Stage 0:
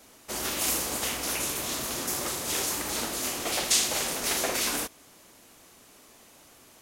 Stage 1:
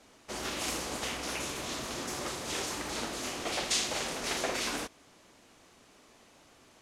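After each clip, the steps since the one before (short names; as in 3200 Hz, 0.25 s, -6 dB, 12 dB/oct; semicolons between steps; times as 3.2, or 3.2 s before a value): air absorption 65 m; gain -2.5 dB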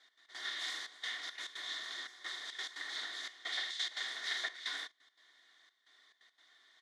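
double band-pass 2600 Hz, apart 0.91 oct; comb 2.8 ms, depth 42%; step gate "x.x.xxxxxx..xx" 174 bpm -12 dB; gain +4.5 dB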